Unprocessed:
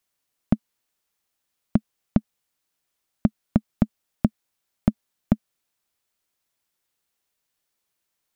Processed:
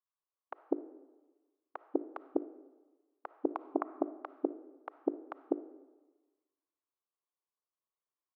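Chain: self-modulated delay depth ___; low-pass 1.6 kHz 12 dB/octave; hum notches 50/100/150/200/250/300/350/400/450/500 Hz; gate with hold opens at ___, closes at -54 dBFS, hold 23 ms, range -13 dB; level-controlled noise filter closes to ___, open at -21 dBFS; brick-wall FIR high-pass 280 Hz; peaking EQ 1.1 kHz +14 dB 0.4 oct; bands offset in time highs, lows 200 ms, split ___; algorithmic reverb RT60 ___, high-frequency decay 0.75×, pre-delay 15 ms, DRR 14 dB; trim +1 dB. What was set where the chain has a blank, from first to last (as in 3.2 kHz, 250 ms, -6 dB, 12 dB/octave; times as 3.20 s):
0.11 ms, -50 dBFS, 910 Hz, 780 Hz, 1.2 s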